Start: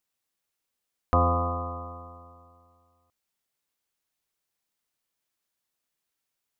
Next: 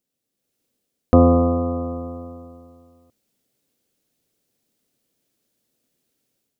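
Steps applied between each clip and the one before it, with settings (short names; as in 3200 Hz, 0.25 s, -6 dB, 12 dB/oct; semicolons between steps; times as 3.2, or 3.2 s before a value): graphic EQ 125/250/500/1000/2000 Hz +7/+11/+8/-8/-3 dB; AGC gain up to 9 dB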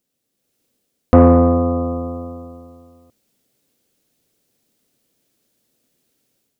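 soft clip -6.5 dBFS, distortion -17 dB; gain +5.5 dB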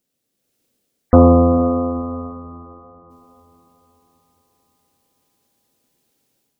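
spectral gate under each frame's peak -30 dB strong; diffused feedback echo 0.473 s, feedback 46%, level -15 dB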